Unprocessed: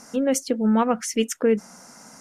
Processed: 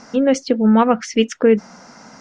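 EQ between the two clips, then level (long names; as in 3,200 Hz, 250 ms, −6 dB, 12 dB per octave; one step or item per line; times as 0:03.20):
low-pass filter 5,100 Hz 24 dB per octave
+6.5 dB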